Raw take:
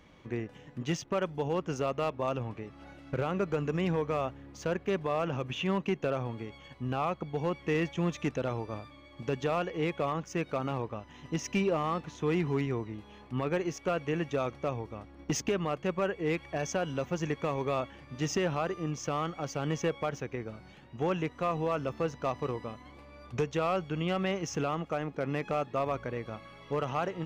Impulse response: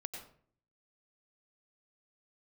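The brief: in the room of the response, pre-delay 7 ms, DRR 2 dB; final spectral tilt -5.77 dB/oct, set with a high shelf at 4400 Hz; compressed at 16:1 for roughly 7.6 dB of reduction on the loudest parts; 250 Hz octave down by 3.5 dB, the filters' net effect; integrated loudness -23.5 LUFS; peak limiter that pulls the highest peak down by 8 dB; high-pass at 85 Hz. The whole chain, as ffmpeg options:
-filter_complex "[0:a]highpass=85,equalizer=f=250:t=o:g=-5.5,highshelf=f=4.4k:g=-8.5,acompressor=threshold=-34dB:ratio=16,alimiter=level_in=6.5dB:limit=-24dB:level=0:latency=1,volume=-6.5dB,asplit=2[a][b];[1:a]atrim=start_sample=2205,adelay=7[c];[b][c]afir=irnorm=-1:irlink=0,volume=-0.5dB[d];[a][d]amix=inputs=2:normalize=0,volume=16.5dB"

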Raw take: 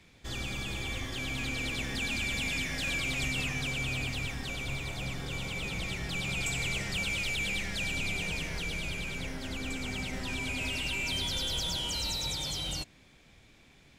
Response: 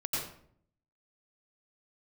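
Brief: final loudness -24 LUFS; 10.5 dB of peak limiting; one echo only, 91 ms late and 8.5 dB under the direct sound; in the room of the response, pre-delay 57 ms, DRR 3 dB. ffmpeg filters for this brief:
-filter_complex "[0:a]alimiter=level_in=7.5dB:limit=-24dB:level=0:latency=1,volume=-7.5dB,aecho=1:1:91:0.376,asplit=2[a][b];[1:a]atrim=start_sample=2205,adelay=57[c];[b][c]afir=irnorm=-1:irlink=0,volume=-8dB[d];[a][d]amix=inputs=2:normalize=0,volume=11.5dB"

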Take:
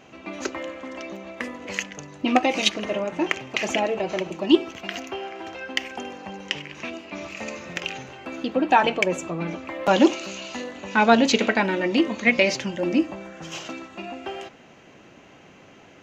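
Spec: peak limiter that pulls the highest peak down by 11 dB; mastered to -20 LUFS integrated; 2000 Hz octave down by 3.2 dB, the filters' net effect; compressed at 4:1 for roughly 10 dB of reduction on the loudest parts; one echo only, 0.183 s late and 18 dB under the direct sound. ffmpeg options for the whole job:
-af "equalizer=f=2k:t=o:g=-4,acompressor=threshold=-22dB:ratio=4,alimiter=limit=-19.5dB:level=0:latency=1,aecho=1:1:183:0.126,volume=12dB"

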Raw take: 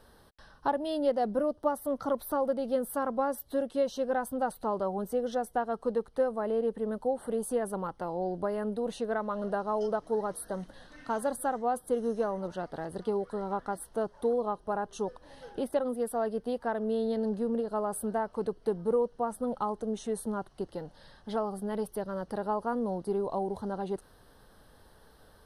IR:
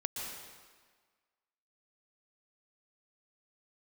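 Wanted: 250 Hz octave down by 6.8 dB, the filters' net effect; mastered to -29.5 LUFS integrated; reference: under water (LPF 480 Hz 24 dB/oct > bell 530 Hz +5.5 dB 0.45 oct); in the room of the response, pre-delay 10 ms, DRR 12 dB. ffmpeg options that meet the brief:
-filter_complex "[0:a]equalizer=f=250:t=o:g=-8.5,asplit=2[a][b];[1:a]atrim=start_sample=2205,adelay=10[c];[b][c]afir=irnorm=-1:irlink=0,volume=-14dB[d];[a][d]amix=inputs=2:normalize=0,lowpass=f=480:w=0.5412,lowpass=f=480:w=1.3066,equalizer=f=530:t=o:w=0.45:g=5.5,volume=6.5dB"

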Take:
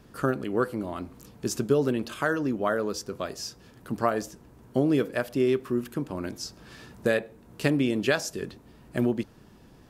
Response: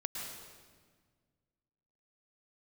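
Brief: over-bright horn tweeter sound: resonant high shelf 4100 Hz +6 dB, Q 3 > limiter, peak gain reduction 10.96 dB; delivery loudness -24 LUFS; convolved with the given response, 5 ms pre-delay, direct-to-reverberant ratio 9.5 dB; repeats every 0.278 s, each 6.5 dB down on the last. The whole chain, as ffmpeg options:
-filter_complex "[0:a]aecho=1:1:278|556|834|1112|1390|1668:0.473|0.222|0.105|0.0491|0.0231|0.0109,asplit=2[a][b];[1:a]atrim=start_sample=2205,adelay=5[c];[b][c]afir=irnorm=-1:irlink=0,volume=-10.5dB[d];[a][d]amix=inputs=2:normalize=0,highshelf=f=4.1k:t=q:w=3:g=6,volume=6.5dB,alimiter=limit=-13.5dB:level=0:latency=1"

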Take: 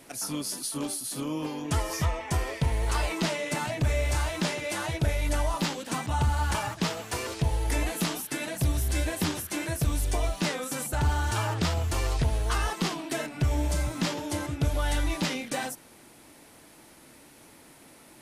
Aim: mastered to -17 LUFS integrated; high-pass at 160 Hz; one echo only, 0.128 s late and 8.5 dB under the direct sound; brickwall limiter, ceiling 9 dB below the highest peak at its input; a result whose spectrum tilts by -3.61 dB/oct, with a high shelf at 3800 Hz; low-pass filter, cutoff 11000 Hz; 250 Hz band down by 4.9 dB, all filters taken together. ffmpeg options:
-af "highpass=160,lowpass=11k,equalizer=f=250:t=o:g=-5.5,highshelf=f=3.8k:g=-5,alimiter=level_in=2.5dB:limit=-24dB:level=0:latency=1,volume=-2.5dB,aecho=1:1:128:0.376,volume=18.5dB"

